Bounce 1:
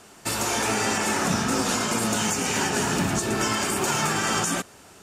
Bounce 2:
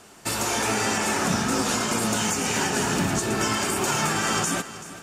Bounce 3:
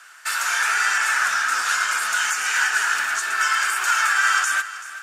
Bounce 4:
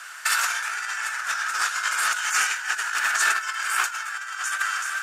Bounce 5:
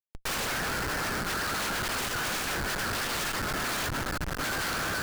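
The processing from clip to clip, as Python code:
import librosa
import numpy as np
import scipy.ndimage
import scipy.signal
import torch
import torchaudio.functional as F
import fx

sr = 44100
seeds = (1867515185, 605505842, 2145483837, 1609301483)

y1 = fx.echo_feedback(x, sr, ms=383, feedback_pct=44, wet_db=-15.5)
y2 = fx.highpass_res(y1, sr, hz=1500.0, q=4.8)
y3 = fx.low_shelf(y2, sr, hz=310.0, db=-8.0)
y3 = fx.over_compress(y3, sr, threshold_db=-26.0, ratio=-0.5)
y3 = y3 * librosa.db_to_amplitude(1.5)
y4 = fx.cheby_harmonics(y3, sr, harmonics=(6, 7), levels_db=(-33, -13), full_scale_db=-8.0)
y4 = fx.vibrato(y4, sr, rate_hz=8.6, depth_cents=67.0)
y4 = fx.schmitt(y4, sr, flips_db=-35.5)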